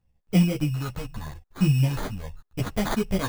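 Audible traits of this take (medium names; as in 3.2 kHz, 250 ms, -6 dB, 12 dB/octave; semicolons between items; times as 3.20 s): phasing stages 4, 0.78 Hz, lowest notch 350–2500 Hz; aliases and images of a low sample rate 2.7 kHz, jitter 0%; a shimmering, thickened sound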